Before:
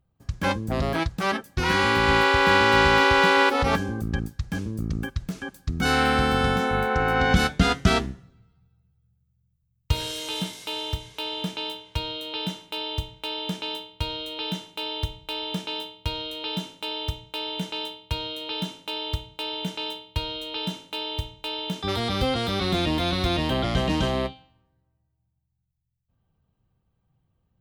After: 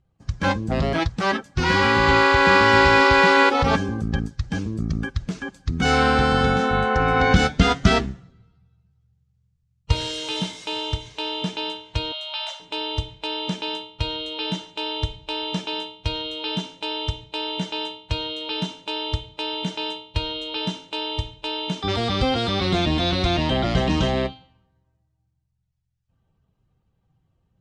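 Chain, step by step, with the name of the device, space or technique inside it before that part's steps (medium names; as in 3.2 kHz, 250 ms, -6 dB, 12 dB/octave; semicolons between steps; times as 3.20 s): clip after many re-uploads (low-pass 7.6 kHz 24 dB/octave; coarse spectral quantiser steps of 15 dB); 12.12–12.60 s: Chebyshev high-pass 550 Hz, order 10; trim +3.5 dB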